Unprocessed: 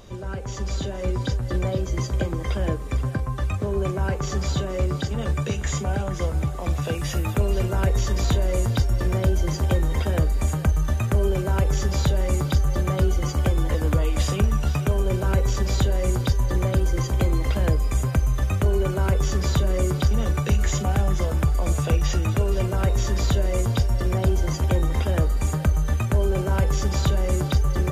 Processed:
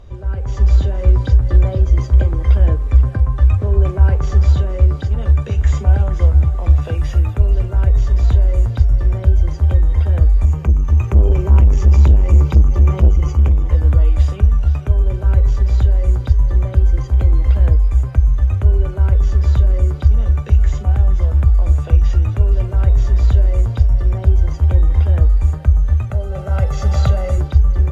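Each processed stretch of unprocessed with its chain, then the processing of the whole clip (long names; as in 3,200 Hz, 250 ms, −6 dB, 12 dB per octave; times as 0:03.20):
0:10.45–0:13.72: EQ curve with evenly spaced ripples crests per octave 0.76, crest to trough 8 dB + saturating transformer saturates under 250 Hz
0:26.10–0:27.38: high-pass filter 130 Hz + comb filter 1.5 ms, depth 69%
whole clip: low-pass filter 2,100 Hz 6 dB per octave; low shelf with overshoot 110 Hz +10.5 dB, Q 1.5; automatic gain control; level −1 dB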